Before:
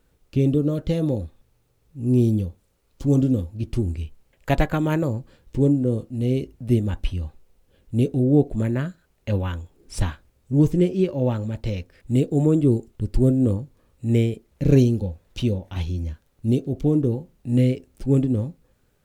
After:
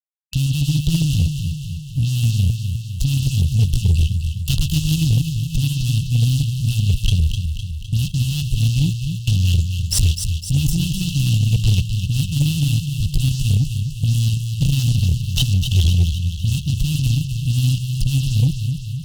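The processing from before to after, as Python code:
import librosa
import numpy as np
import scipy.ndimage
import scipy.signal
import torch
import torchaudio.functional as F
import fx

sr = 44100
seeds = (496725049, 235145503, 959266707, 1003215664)

y = fx.fuzz(x, sr, gain_db=36.0, gate_db=-41.0)
y = fx.brickwall_bandstop(y, sr, low_hz=180.0, high_hz=2600.0)
y = fx.echo_feedback(y, sr, ms=255, feedback_pct=59, wet_db=-6.5)
y = fx.cheby_harmonics(y, sr, harmonics=(2, 6, 8), levels_db=(-22, -24, -29), full_scale_db=-7.5)
y = y * 10.0 ** (1.0 / 20.0)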